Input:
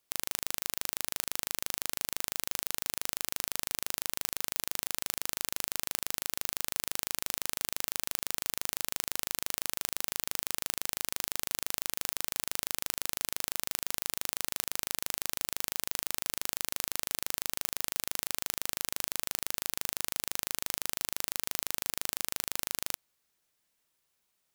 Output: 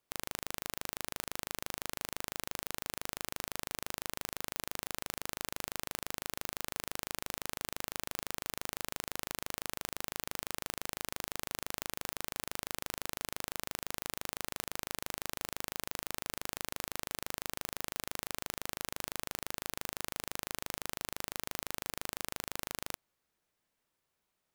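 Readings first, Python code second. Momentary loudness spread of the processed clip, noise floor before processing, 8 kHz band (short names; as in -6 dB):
0 LU, -78 dBFS, -7.5 dB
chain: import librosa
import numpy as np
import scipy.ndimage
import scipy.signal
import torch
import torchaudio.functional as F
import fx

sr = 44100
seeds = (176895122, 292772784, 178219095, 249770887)

y = fx.high_shelf(x, sr, hz=2400.0, db=-10.0)
y = y * 10.0 ** (1.5 / 20.0)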